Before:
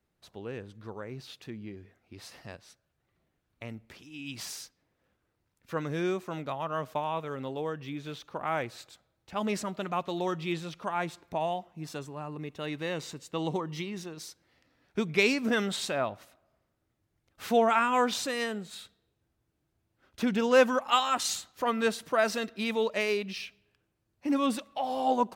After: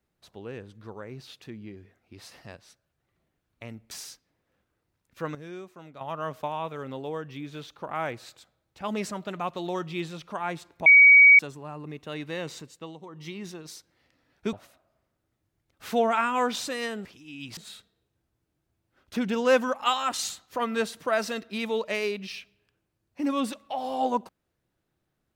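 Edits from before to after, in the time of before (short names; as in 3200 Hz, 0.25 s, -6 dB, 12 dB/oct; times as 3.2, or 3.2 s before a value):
3.91–4.43 move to 18.63
5.87–6.53 gain -10.5 dB
11.38–11.91 bleep 2260 Hz -10 dBFS
13.1–13.94 dip -17 dB, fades 0.41 s
15.05–16.11 cut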